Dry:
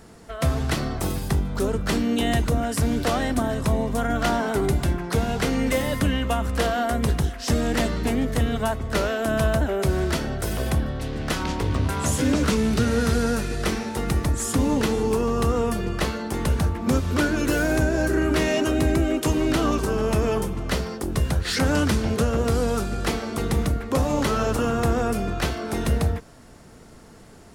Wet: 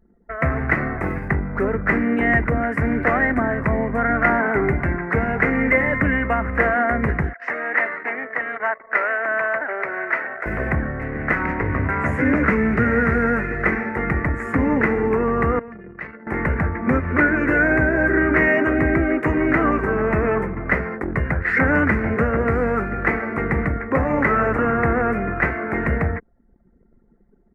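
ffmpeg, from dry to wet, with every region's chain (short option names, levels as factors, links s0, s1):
-filter_complex "[0:a]asettb=1/sr,asplit=3[s0][s1][s2];[s0]atrim=end=7.334[s3];[s1]atrim=start=7.33:end=10.46,asetpts=PTS-STARTPTS,afade=t=in:d=0.004:c=qsin,afade=t=out:st=3.126:d=0.004:c=qsin,highpass=690,lowpass=5600,aecho=1:1:871:0.141,atrim=end_sample=138033[s4];[s2]atrim=start=10.456[s5];[s3][s4]acrossfade=d=0.004:c1=hsin:c2=qsin[s6];[s6][s5]acrossfade=d=0.004:c1=qsin:c2=hsin,asettb=1/sr,asplit=3[s7][s8][s9];[s7]atrim=end=15.594[s10];[s8]atrim=start=15.59:end=16.27,asetpts=PTS-STARTPTS,afade=t=in:d=0.004:c=qsin,afade=t=out:st=0.676:d=0.004:c=qsin,acrossover=split=150 5200:gain=0.1 1 0.0708[s11][s12][s13];[s11][s12][s13]amix=inputs=3:normalize=0,acrossover=split=120|3000[s14][s15][s16];[s15]acompressor=threshold=0.00355:ratio=2:attack=3.2:release=140:knee=2.83:detection=peak[s17];[s14][s17][s16]amix=inputs=3:normalize=0,asoftclip=type=hard:threshold=0.0251[s18];[s9]atrim=start=16.266[s19];[s10][s18]acrossfade=d=0.004:c1=hsin:c2=qsin[s20];[s20][s19]acrossfade=d=0.004:c1=qsin:c2=hsin,lowshelf=f=86:g=-7.5,anlmdn=1,firequalizer=gain_entry='entry(940,0);entry(2000,12);entry(3300,-30)':delay=0.05:min_phase=1,volume=1.5"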